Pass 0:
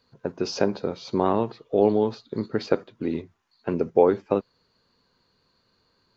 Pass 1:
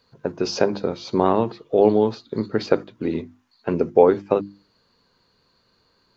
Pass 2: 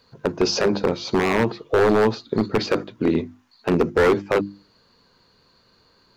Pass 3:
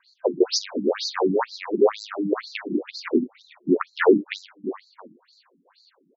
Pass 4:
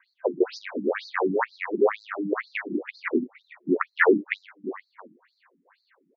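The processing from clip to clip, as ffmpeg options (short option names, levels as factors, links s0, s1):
-af "bandreject=f=50:t=h:w=6,bandreject=f=100:t=h:w=6,bandreject=f=150:t=h:w=6,bandreject=f=200:t=h:w=6,bandreject=f=250:t=h:w=6,bandreject=f=300:t=h:w=6,bandreject=f=350:t=h:w=6,volume=1.58"
-af "alimiter=limit=0.355:level=0:latency=1:release=13,aeval=exprs='0.178*(abs(mod(val(0)/0.178+3,4)-2)-1)':c=same,volume=1.78"
-filter_complex "[0:a]asplit=2[s0][s1];[s1]asplit=4[s2][s3][s4][s5];[s2]adelay=337,afreqshift=-120,volume=0.316[s6];[s3]adelay=674,afreqshift=-240,volume=0.111[s7];[s4]adelay=1011,afreqshift=-360,volume=0.0389[s8];[s5]adelay=1348,afreqshift=-480,volume=0.0135[s9];[s6][s7][s8][s9]amix=inputs=4:normalize=0[s10];[s0][s10]amix=inputs=2:normalize=0,afftfilt=real='re*between(b*sr/1024,240*pow(5500/240,0.5+0.5*sin(2*PI*2.1*pts/sr))/1.41,240*pow(5500/240,0.5+0.5*sin(2*PI*2.1*pts/sr))*1.41)':imag='im*between(b*sr/1024,240*pow(5500/240,0.5+0.5*sin(2*PI*2.1*pts/sr))/1.41,240*pow(5500/240,0.5+0.5*sin(2*PI*2.1*pts/sr))*1.41)':win_size=1024:overlap=0.75,volume=1.68"
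-af "lowpass=f=2000:t=q:w=3.1,lowshelf=f=120:g=-6.5,volume=0.708"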